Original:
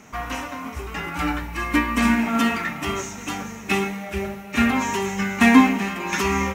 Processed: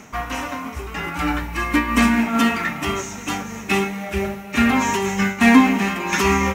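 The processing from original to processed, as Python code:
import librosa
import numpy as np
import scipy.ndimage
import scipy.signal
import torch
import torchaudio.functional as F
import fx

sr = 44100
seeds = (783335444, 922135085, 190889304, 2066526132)

p1 = np.clip(10.0 ** (16.5 / 20.0) * x, -1.0, 1.0) / 10.0 ** (16.5 / 20.0)
p2 = x + (p1 * 10.0 ** (-8.0 / 20.0))
p3 = fx.am_noise(p2, sr, seeds[0], hz=5.7, depth_pct=65)
y = p3 * 10.0 ** (3.5 / 20.0)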